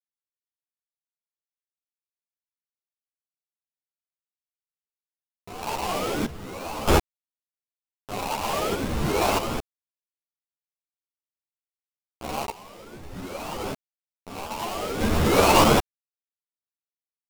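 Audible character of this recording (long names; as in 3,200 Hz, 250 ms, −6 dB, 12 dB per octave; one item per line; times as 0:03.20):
a quantiser's noise floor 6 bits, dither none
sample-and-hold tremolo 1.6 Hz, depth 90%
aliases and images of a low sample rate 1,800 Hz, jitter 20%
a shimmering, thickened sound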